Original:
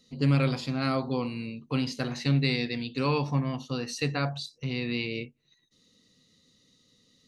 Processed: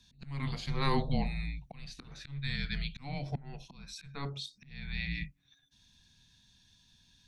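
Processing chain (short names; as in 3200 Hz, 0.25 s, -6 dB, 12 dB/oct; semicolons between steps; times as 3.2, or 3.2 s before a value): auto swell 0.626 s; frequency shift -280 Hz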